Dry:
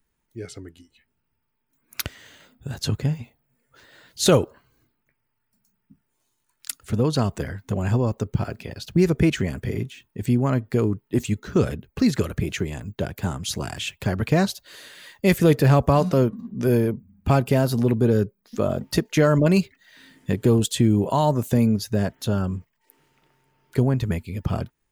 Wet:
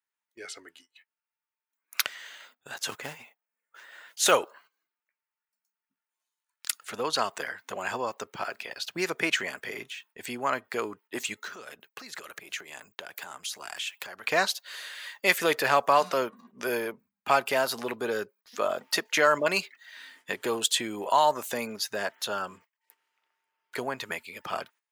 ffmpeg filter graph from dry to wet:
ffmpeg -i in.wav -filter_complex "[0:a]asettb=1/sr,asplit=3[link_01][link_02][link_03];[link_01]atrim=end=2.804[link_04];[link_02]atrim=start=2.8:end=4.32,asetpts=PTS-STARTPTS,afade=type=in:duration=0.004:curve=qsin,afade=type=out:start_time=1.516:duration=0.004:curve=qsin,equalizer=frequency=4300:width=2.6:gain=-9,acrusher=bits=7:mode=log:mix=0:aa=0.000001[link_05];[link_03]atrim=start=4.316[link_06];[link_04][link_05]acrossfade=duration=0.004:curve1=hsin:curve2=qsin[link_07];[link_07][link_06]acrossfade=duration=0.004:curve1=qsin:curve2=hsin,asettb=1/sr,asplit=3[link_08][link_09][link_10];[link_08]atrim=end=11.404[link_11];[link_09]atrim=start=11.4:end=14.24,asetpts=PTS-STARTPTS,afade=type=in:duration=0.004:curve=qsin,afade=type=out:start_time=2.836:duration=0.004:curve=qsin,highshelf=frequency=8100:gain=6.5,acompressor=threshold=-34dB:ratio=5:attack=3.2:release=140:knee=1:detection=peak[link_12];[link_10]atrim=start=14.236[link_13];[link_11][link_12]acrossfade=duration=0.004:curve1=hsin:curve2=qsin[link_14];[link_14][link_13]acrossfade=duration=0.004:curve1=qsin:curve2=hsin,highpass=990,agate=range=-15dB:threshold=-60dB:ratio=16:detection=peak,highshelf=frequency=4400:gain=-6.5,volume=6dB" out.wav

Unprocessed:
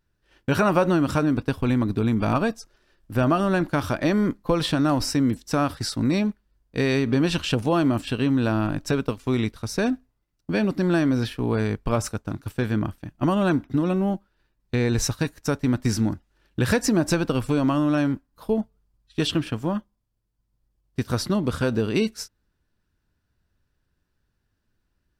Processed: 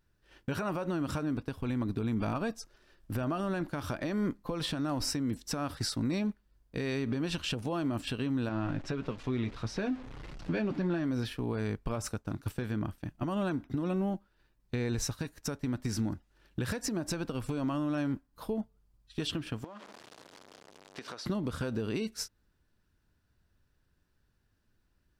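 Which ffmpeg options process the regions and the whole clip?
ffmpeg -i in.wav -filter_complex "[0:a]asettb=1/sr,asplit=3[link_01][link_02][link_03];[link_01]atrim=end=8.494[link_04];[link_02]atrim=start=8.49:end=11.04,asetpts=PTS-STARTPTS,afade=type=in:duration=0.004:curve=qsin,afade=type=out:start_time=2.546:duration=0.004:curve=qsin,aeval=exprs='val(0)+0.5*0.0211*sgn(val(0))':channel_layout=same,lowpass=3800,flanger=delay=5.2:depth=3:regen=-49:speed=1.6:shape=triangular[link_05];[link_03]atrim=start=11.036[link_06];[link_04][link_05]acrossfade=duration=0.004:curve1=hsin:curve2=qsin[link_07];[link_07][link_06]acrossfade=duration=0.004:curve1=qsin:curve2=hsin,asettb=1/sr,asplit=3[link_08][link_09][link_10];[link_08]atrim=end=19.644[link_11];[link_09]atrim=start=19.64:end=21.26,asetpts=PTS-STARTPTS,afade=type=in:duration=0.004:curve=qsin,afade=type=out:start_time=1.616:duration=0.004:curve=qsin,aeval=exprs='val(0)+0.5*0.015*sgn(val(0))':channel_layout=same,highpass=440,lowpass=5500,acompressor=threshold=-38dB:ratio=20:attack=3.2:release=140:knee=1:detection=peak[link_12];[link_10]atrim=start=21.256[link_13];[link_11][link_12]acrossfade=duration=0.004:curve1=hsin:curve2=qsin[link_14];[link_14][link_13]acrossfade=duration=0.004:curve1=qsin:curve2=hsin,acompressor=threshold=-22dB:ratio=6,alimiter=limit=-23dB:level=0:latency=1:release=413" out.wav

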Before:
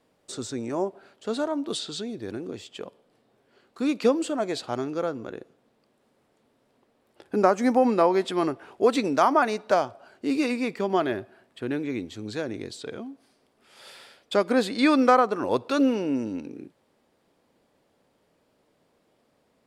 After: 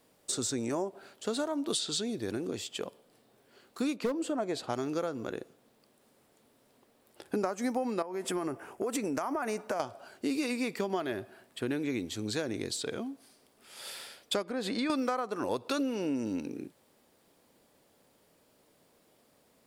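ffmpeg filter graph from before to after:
ffmpeg -i in.wav -filter_complex "[0:a]asettb=1/sr,asplit=3[link_01][link_02][link_03];[link_01]atrim=end=3.954[link_04];[link_02]atrim=start=3.95:end=4.7,asetpts=PTS-STARTPTS,afade=type=in:duration=0.004:curve=qsin,afade=type=out:start_time=0.746:duration=0.004:curve=qsin,highshelf=frequency=2400:gain=-11.5,asoftclip=type=hard:threshold=-17dB[link_05];[link_03]atrim=start=4.696[link_06];[link_04][link_05]acrossfade=duration=0.004:curve1=hsin:curve2=qsin[link_07];[link_07][link_06]acrossfade=duration=0.004:curve1=qsin:curve2=hsin,asettb=1/sr,asplit=3[link_08][link_09][link_10];[link_08]atrim=end=8.024[link_11];[link_09]atrim=start=8.02:end=9.8,asetpts=PTS-STARTPTS,afade=type=in:duration=0.004:curve=qsin,afade=type=out:start_time=1.776:duration=0.004:curve=qsin,equalizer=frequency=3900:width=2:gain=-13.5,acompressor=threshold=-27dB:ratio=8:attack=3.2:release=140:knee=1:detection=peak[link_12];[link_10]atrim=start=9.796[link_13];[link_11][link_12]acrossfade=duration=0.004:curve1=hsin:curve2=qsin[link_14];[link_14][link_13]acrossfade=duration=0.004:curve1=qsin:curve2=hsin,asettb=1/sr,asplit=3[link_15][link_16][link_17];[link_15]atrim=end=14.424[link_18];[link_16]atrim=start=14.42:end=14.9,asetpts=PTS-STARTPTS,afade=type=in:duration=0.004:curve=qsin,afade=type=out:start_time=0.476:duration=0.004:curve=qsin,lowpass=frequency=2700:poles=1,acompressor=threshold=-28dB:ratio=3:attack=3.2:release=140:knee=1:detection=peak[link_19];[link_17]atrim=start=14.896[link_20];[link_18][link_19]acrossfade=duration=0.004:curve1=hsin:curve2=qsin[link_21];[link_21][link_20]acrossfade=duration=0.004:curve1=qsin:curve2=hsin,aemphasis=mode=production:type=50kf,acompressor=threshold=-28dB:ratio=10" out.wav

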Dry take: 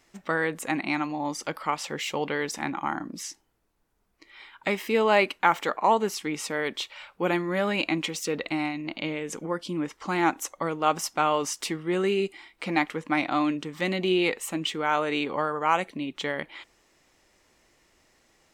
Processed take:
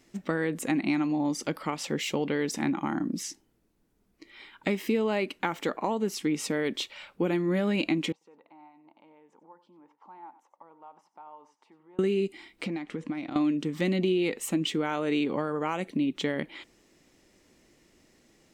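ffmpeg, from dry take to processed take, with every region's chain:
ffmpeg -i in.wav -filter_complex "[0:a]asettb=1/sr,asplit=3[link_01][link_02][link_03];[link_01]atrim=end=8.124[link_04];[link_02]atrim=start=8.12:end=11.99,asetpts=PTS-STARTPTS,afade=type=in:duration=0.004:curve=qsin,afade=type=out:start_time=3.866:duration=0.004:curve=qsin,acompressor=threshold=-37dB:ratio=2.5:attack=3.2:release=140:knee=1:detection=peak,bandpass=frequency=900:width_type=q:width=8,aecho=1:1:92:0.178,atrim=end_sample=170667[link_05];[link_03]atrim=start=11.986[link_06];[link_04][link_05]acrossfade=duration=0.004:curve1=hsin:curve2=qsin[link_07];[link_07][link_06]acrossfade=duration=0.004:curve1=qsin:curve2=hsin,asettb=1/sr,asplit=3[link_08][link_09][link_10];[link_08]atrim=end=12.664[link_11];[link_09]atrim=start=12.66:end=13.36,asetpts=PTS-STARTPTS,afade=type=in:duration=0.004:curve=qsin,afade=type=out:start_time=0.696:duration=0.004:curve=qsin,lowpass=frequency=10000:width=0.5412,lowpass=frequency=10000:width=1.3066,highshelf=frequency=6900:gain=-5.5,acompressor=threshold=-35dB:ratio=8:attack=3.2:release=140:knee=1:detection=peak[link_12];[link_10]atrim=start=13.356[link_13];[link_11][link_12]acrossfade=duration=0.004:curve1=hsin:curve2=qsin[link_14];[link_14][link_13]acrossfade=duration=0.004:curve1=qsin:curve2=hsin,equalizer=frequency=240:width_type=o:width=2:gain=9,acompressor=threshold=-22dB:ratio=6,equalizer=frequency=1000:width_type=o:width=1.6:gain=-5.5" out.wav

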